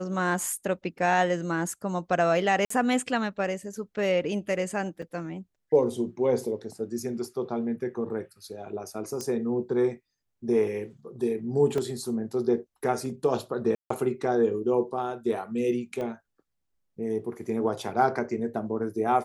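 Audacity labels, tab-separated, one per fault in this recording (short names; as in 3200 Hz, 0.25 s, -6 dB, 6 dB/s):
2.650000	2.700000	gap 54 ms
5.020000	5.020000	gap 4.1 ms
9.210000	9.210000	pop -20 dBFS
11.780000	11.780000	gap 3 ms
13.750000	13.900000	gap 0.154 s
16.010000	16.010000	pop -23 dBFS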